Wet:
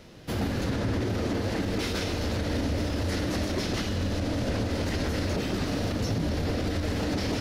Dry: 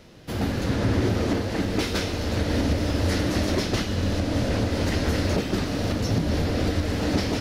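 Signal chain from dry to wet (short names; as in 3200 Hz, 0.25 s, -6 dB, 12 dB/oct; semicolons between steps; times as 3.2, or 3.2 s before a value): limiter -20 dBFS, peak gain reduction 8.5 dB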